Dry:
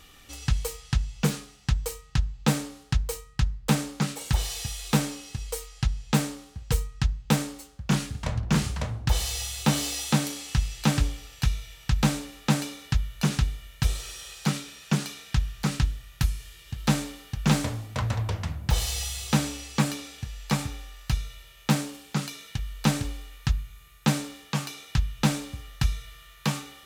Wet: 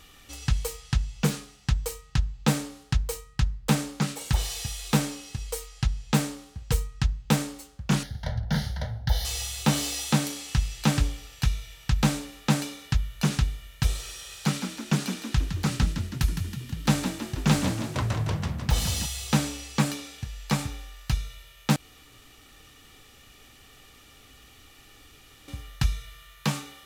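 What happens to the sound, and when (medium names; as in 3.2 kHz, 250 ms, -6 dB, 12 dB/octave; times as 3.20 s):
8.03–9.25 s: static phaser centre 1.7 kHz, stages 8
14.15–19.06 s: frequency-shifting echo 161 ms, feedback 55%, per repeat +38 Hz, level -8 dB
21.76–25.48 s: room tone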